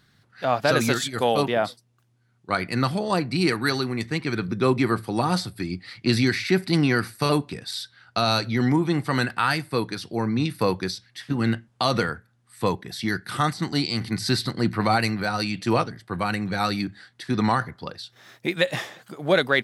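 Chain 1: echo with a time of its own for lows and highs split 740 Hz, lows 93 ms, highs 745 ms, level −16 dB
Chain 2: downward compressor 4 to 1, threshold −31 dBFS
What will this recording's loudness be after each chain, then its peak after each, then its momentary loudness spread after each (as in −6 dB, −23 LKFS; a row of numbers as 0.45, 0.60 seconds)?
−24.5, −34.5 LKFS; −7.0, −13.0 dBFS; 11, 5 LU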